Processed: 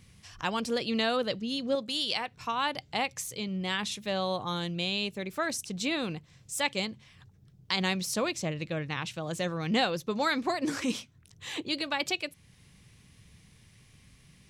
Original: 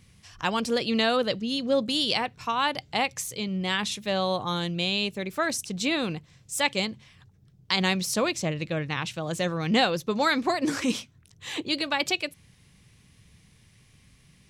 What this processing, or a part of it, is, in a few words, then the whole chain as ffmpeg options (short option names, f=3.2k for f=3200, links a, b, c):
parallel compression: -filter_complex "[0:a]asplit=2[a][b];[b]acompressor=threshold=-44dB:ratio=6,volume=-2.5dB[c];[a][c]amix=inputs=2:normalize=0,asettb=1/sr,asplit=3[d][e][f];[d]atrim=end=1.754[g];[e]atrim=start=1.75:end=2.32,asetpts=PTS-STARTPTS,afade=t=in:d=0.004:c=qsin,afade=t=out:st=0.566:d=0.004:c=qsin,lowshelf=f=500:g=-7.5[h];[f]atrim=start=2.316[i];[g][h]acrossfade=d=0.004:c1=hsin:c2=qsin[j];[j][i]acrossfade=d=0.004:c1=qsin:c2=hsin,volume=-5dB"